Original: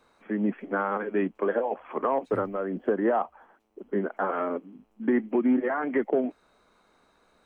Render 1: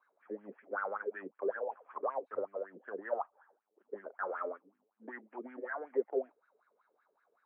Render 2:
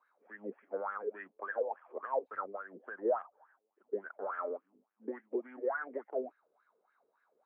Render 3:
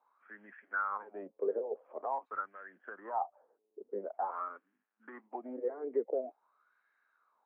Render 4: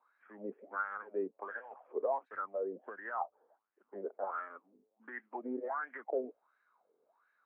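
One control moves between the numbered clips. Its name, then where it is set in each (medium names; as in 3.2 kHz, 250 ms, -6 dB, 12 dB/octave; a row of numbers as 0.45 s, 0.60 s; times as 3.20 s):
wah-wah, rate: 5.3 Hz, 3.5 Hz, 0.47 Hz, 1.4 Hz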